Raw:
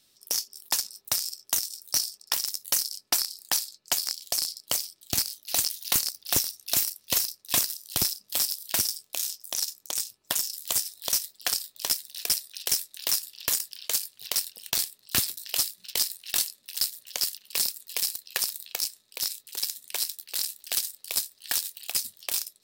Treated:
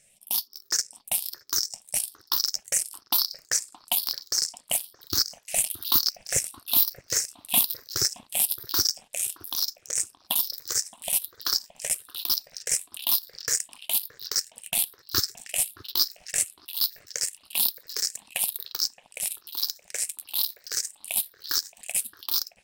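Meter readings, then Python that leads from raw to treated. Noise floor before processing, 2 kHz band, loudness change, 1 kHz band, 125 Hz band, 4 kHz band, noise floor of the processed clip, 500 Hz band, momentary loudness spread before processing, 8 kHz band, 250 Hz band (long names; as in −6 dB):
−65 dBFS, 0.0 dB, +1.5 dB, 0.0 dB, 0.0 dB, +1.0 dB, −62 dBFS, 0.0 dB, 5 LU, +1.0 dB, −0.5 dB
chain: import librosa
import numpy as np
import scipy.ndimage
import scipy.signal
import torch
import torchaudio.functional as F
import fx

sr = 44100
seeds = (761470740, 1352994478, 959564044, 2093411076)

y = fx.spec_ripple(x, sr, per_octave=0.52, drift_hz=1.1, depth_db=20)
y = fx.transient(y, sr, attack_db=-6, sustain_db=-10)
y = fx.echo_wet_lowpass(y, sr, ms=622, feedback_pct=40, hz=1600.0, wet_db=-14.5)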